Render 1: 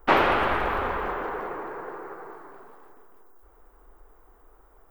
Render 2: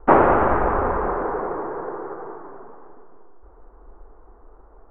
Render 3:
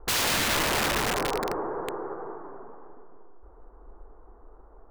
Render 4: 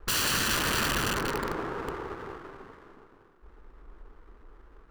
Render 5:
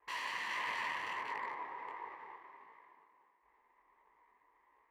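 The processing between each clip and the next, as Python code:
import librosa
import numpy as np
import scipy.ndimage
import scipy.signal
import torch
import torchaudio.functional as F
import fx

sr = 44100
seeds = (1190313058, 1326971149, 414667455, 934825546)

y1 = scipy.signal.sosfilt(scipy.signal.bessel(4, 990.0, 'lowpass', norm='mag', fs=sr, output='sos'), x)
y1 = y1 * 10.0 ** (8.5 / 20.0)
y2 = fx.high_shelf(y1, sr, hz=2900.0, db=-7.0)
y2 = (np.mod(10.0 ** (18.0 / 20.0) * y2 + 1.0, 2.0) - 1.0) / 10.0 ** (18.0 / 20.0)
y2 = y2 * 10.0 ** (-2.5 / 20.0)
y3 = fx.lower_of_two(y2, sr, delay_ms=0.69)
y4 = fx.double_bandpass(y3, sr, hz=1400.0, octaves=1.0)
y4 = fx.detune_double(y4, sr, cents=50)
y4 = y4 * 10.0 ** (3.5 / 20.0)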